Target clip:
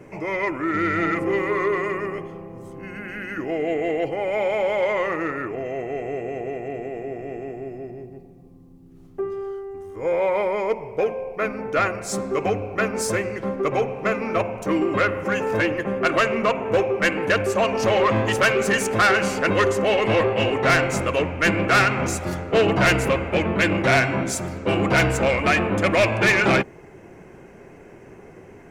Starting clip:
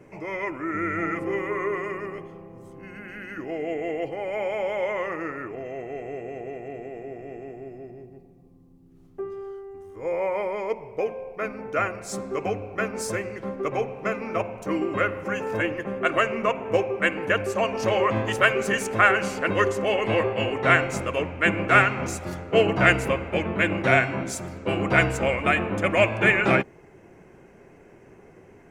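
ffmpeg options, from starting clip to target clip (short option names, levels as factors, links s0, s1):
-af "asoftclip=type=tanh:threshold=0.119,volume=2"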